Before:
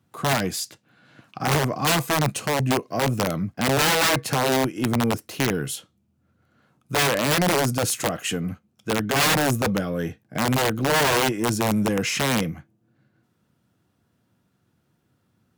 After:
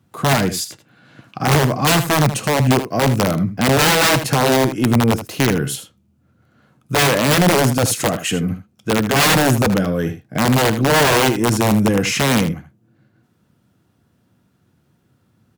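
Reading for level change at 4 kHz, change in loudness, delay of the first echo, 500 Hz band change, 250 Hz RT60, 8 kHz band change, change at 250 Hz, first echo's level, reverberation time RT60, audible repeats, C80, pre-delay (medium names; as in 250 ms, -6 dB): +5.5 dB, +6.5 dB, 78 ms, +6.5 dB, no reverb, +5.5 dB, +7.5 dB, -11.5 dB, no reverb, 1, no reverb, no reverb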